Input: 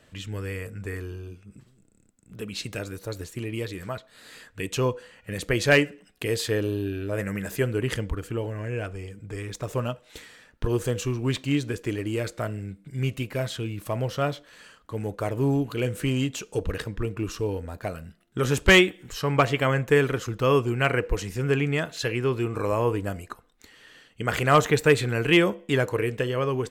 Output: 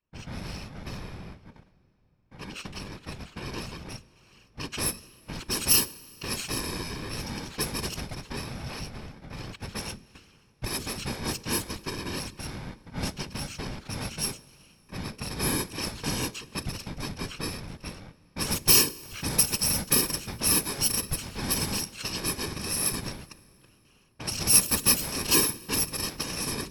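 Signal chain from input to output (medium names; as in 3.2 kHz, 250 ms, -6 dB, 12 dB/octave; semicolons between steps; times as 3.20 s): bit-reversed sample order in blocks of 64 samples; hum notches 60/120/180/240/300/360/420/480/540 Hz; gate with hold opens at -42 dBFS; level-controlled noise filter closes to 2 kHz, open at -18 dBFS; treble shelf 2 kHz +8 dB; in parallel at -1 dB: compression, threshold -30 dBFS, peak gain reduction 21 dB; on the sum: whisper effect; on a send at -21 dB: reverberation RT60 4.0 s, pre-delay 30 ms; on the sum: trim -8 dB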